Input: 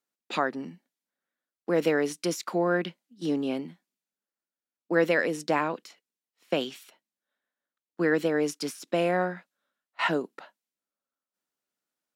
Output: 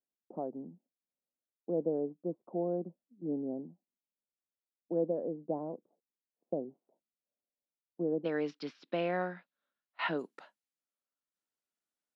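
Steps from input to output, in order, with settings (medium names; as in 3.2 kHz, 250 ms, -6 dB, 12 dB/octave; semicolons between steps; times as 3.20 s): steep low-pass 730 Hz 36 dB/octave, from 8.24 s 4.4 kHz, from 10.18 s 12 kHz; trim -7.5 dB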